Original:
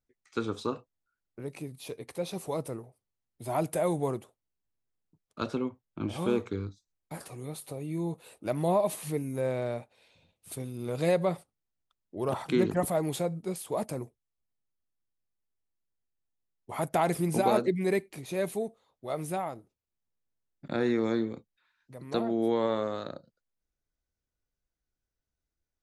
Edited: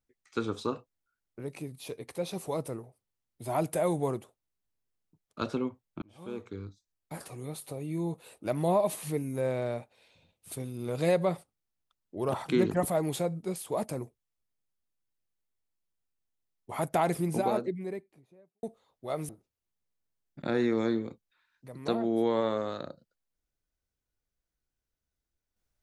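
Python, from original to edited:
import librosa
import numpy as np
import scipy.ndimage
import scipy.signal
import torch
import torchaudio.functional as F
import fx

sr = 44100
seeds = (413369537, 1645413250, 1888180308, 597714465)

y = fx.studio_fade_out(x, sr, start_s=16.81, length_s=1.82)
y = fx.edit(y, sr, fx.fade_in_span(start_s=6.02, length_s=1.16),
    fx.cut(start_s=19.29, length_s=0.26), tone=tone)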